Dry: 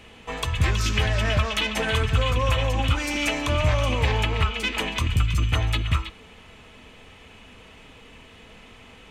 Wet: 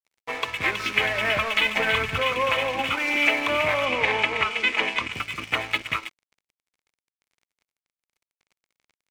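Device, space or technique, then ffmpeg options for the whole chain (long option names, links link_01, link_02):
pocket radio on a weak battery: -filter_complex "[0:a]highpass=340,lowpass=3200,aeval=exprs='sgn(val(0))*max(abs(val(0))-0.00841,0)':channel_layout=same,equalizer=frequency=2200:width_type=o:width=0.3:gain=8.5,asettb=1/sr,asplit=3[link_01][link_02][link_03];[link_01]atrim=end=0.884[link_04];[link_02]atrim=start=0.88:end=2.19,asetpts=PTS-STARTPTS,afade=type=in:duration=0.004:curve=qsin,afade=type=out:start_time=1.306:duration=0.004:curve=qsin,asubboost=boost=7.5:cutoff=170[link_05];[link_03]atrim=start=2.186[link_06];[link_04][link_05]acrossfade=duration=0.004:curve1=hsin:curve2=qsin[link_07];[link_07][link_06]acrossfade=duration=0.004:curve1=qsin:curve2=hsin,asettb=1/sr,asplit=3[link_08][link_09][link_10];[link_08]atrim=end=3.854[link_11];[link_09]atrim=start=3.85:end=5.13,asetpts=PTS-STARTPTS,afade=type=in:duration=0.004:curve=qsin,afade=type=out:start_time=1.276:duration=0.004:curve=qsin,lowpass=7700[link_12];[link_10]atrim=start=5.126[link_13];[link_11][link_12]acrossfade=duration=0.004:curve1=hsin:curve2=qsin[link_14];[link_14][link_13]acrossfade=duration=0.004:curve1=qsin:curve2=hsin,volume=4dB"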